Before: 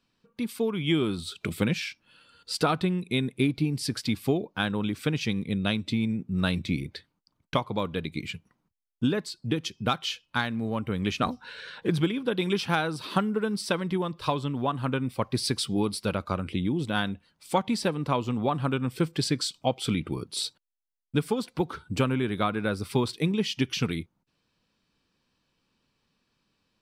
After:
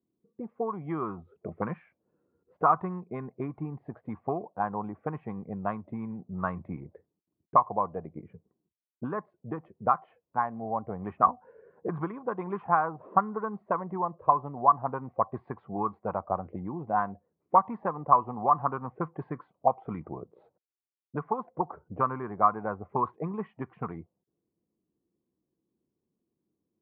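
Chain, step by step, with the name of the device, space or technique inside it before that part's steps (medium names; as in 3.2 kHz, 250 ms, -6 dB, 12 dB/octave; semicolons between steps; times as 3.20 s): envelope filter bass rig (touch-sensitive low-pass 340–1100 Hz up, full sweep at -22 dBFS; cabinet simulation 72–2300 Hz, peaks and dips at 120 Hz -3 dB, 270 Hz -5 dB, 720 Hz +8 dB, 1.1 kHz +8 dB, 1.9 kHz +6 dB); trim -8 dB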